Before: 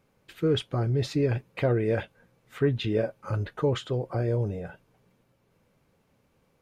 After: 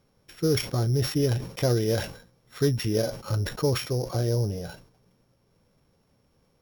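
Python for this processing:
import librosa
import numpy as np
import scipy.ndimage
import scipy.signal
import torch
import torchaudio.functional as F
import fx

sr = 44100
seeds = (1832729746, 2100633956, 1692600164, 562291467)

y = np.r_[np.sort(x[:len(x) // 8 * 8].reshape(-1, 8), axis=1).ravel(), x[len(x) // 8 * 8:]]
y = fx.low_shelf(y, sr, hz=94.0, db=5.5)
y = fx.sustainer(y, sr, db_per_s=110.0)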